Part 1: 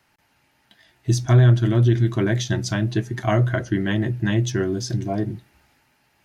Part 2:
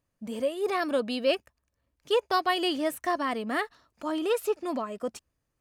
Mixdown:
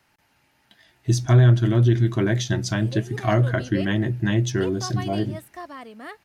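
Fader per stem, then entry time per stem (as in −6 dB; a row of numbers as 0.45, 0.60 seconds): −0.5, −9.5 decibels; 0.00, 2.50 seconds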